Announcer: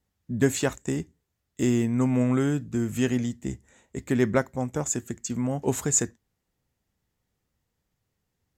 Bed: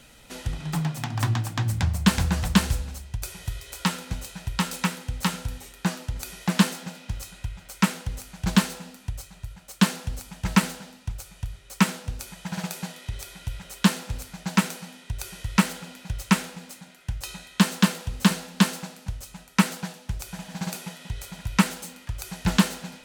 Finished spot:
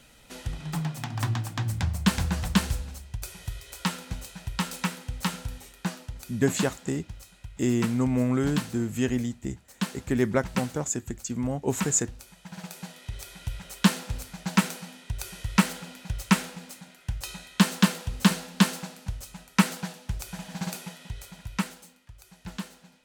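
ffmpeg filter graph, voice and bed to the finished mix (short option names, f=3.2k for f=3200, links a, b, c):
-filter_complex "[0:a]adelay=6000,volume=-1.5dB[a];[1:a]volume=5.5dB,afade=t=out:st=5.65:d=0.66:silence=0.473151,afade=t=in:st=12.55:d=0.94:silence=0.354813,afade=t=out:st=20.54:d=1.48:silence=0.16788[b];[a][b]amix=inputs=2:normalize=0"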